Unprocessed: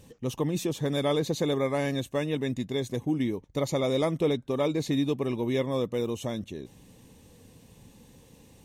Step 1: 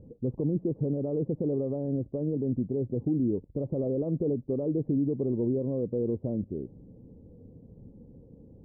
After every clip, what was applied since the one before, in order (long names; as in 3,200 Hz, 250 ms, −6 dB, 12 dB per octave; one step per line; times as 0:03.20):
brickwall limiter −23 dBFS, peak gain reduction 9 dB
inverse Chebyshev low-pass filter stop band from 3,100 Hz, stop band 80 dB
level +4 dB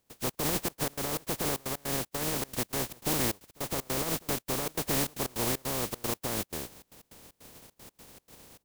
compressing power law on the bin magnitudes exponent 0.2
gate pattern ".xx.xxx.x" 154 BPM −24 dB
level −1.5 dB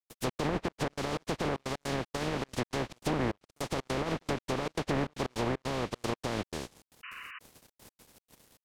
dead-zone distortion −52 dBFS
treble cut that deepens with the level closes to 1,900 Hz, closed at −26 dBFS
sound drawn into the spectrogram noise, 0:07.03–0:07.39, 1,000–3,000 Hz −47 dBFS
level +2 dB